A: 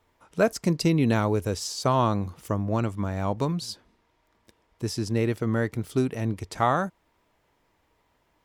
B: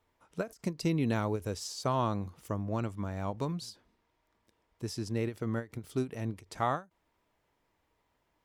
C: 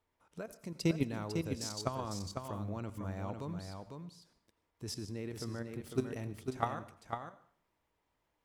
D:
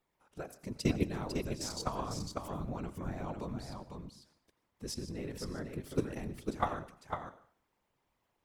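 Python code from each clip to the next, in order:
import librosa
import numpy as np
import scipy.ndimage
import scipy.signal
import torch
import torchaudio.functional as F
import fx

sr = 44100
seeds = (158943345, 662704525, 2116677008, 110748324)

y1 = fx.end_taper(x, sr, db_per_s=270.0)
y1 = y1 * librosa.db_to_amplitude(-7.5)
y2 = fx.level_steps(y1, sr, step_db=14)
y2 = y2 + 10.0 ** (-5.5 / 20.0) * np.pad(y2, (int(501 * sr / 1000.0), 0))[:len(y2)]
y2 = fx.rev_plate(y2, sr, seeds[0], rt60_s=0.51, hf_ratio=0.95, predelay_ms=75, drr_db=15.0)
y2 = y2 * librosa.db_to_amplitude(1.5)
y3 = fx.whisperise(y2, sr, seeds[1])
y3 = y3 * librosa.db_to_amplitude(1.0)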